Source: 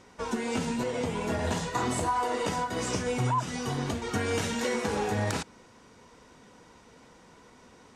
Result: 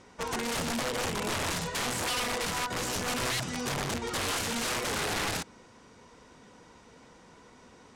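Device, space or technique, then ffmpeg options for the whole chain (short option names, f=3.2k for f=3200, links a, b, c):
overflowing digital effects unit: -filter_complex "[0:a]asettb=1/sr,asplit=3[a][b][c];[a]atrim=end=1.514[d];[b]atrim=start=1.51:end=2.75,asetpts=PTS-STARTPTS,afade=t=in:d=0.004:c=qsin,afade=t=out:st=1.236:d=0.004:c=qsin,equalizer=f=300:t=o:w=0.61:g=-5.5[e];[c]atrim=start=2.746[f];[d][e]acrossfade=d=0.004:c1=hsin:c2=qsin[g];[g][f]acrossfade=d=0.004:c1=qsin:c2=hsin,aeval=exprs='(mod(18.8*val(0)+1,2)-1)/18.8':c=same,lowpass=11k"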